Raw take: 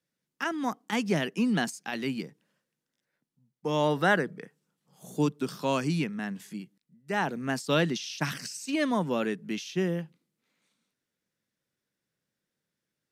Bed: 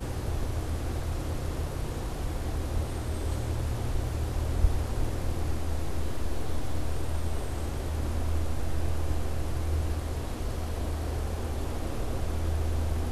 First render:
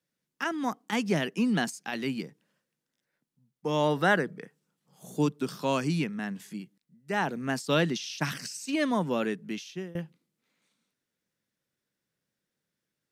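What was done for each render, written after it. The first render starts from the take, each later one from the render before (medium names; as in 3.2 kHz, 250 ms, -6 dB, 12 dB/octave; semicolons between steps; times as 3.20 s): 9.20–9.95 s: fade out equal-power, to -21.5 dB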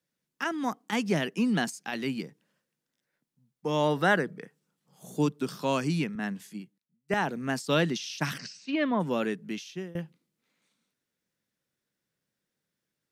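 6.15–7.14 s: three bands expanded up and down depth 100%; 8.37–8.99 s: low-pass 6 kHz -> 2.8 kHz 24 dB/octave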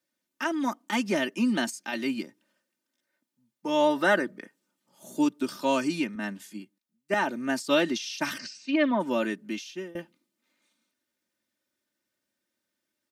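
high-pass 150 Hz 6 dB/octave; comb 3.3 ms, depth 81%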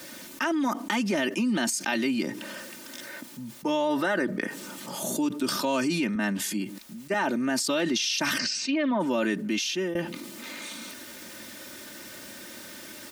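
peak limiter -20 dBFS, peak gain reduction 8.5 dB; level flattener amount 70%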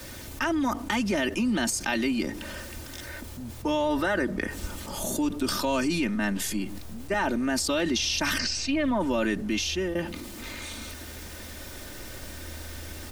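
add bed -13 dB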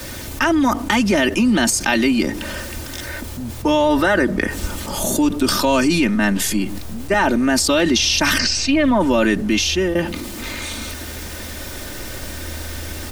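trim +10 dB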